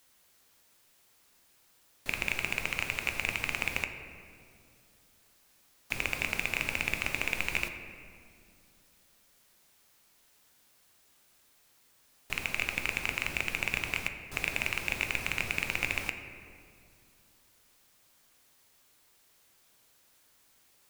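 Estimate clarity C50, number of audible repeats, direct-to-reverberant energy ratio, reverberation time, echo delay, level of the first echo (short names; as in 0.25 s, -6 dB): 8.0 dB, none, 6.0 dB, 2.4 s, none, none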